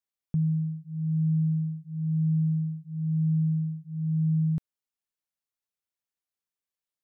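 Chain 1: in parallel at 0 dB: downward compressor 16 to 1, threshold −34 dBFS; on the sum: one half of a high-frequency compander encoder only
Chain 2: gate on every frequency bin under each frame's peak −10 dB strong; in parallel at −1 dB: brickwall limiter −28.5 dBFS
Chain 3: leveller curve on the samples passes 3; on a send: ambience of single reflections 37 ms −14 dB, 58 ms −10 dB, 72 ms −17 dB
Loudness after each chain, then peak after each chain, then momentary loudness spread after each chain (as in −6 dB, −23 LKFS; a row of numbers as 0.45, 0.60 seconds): −25.5, −25.0, −24.0 LKFS; −16.0, −17.5, −17.5 dBFS; 7, 6, 3 LU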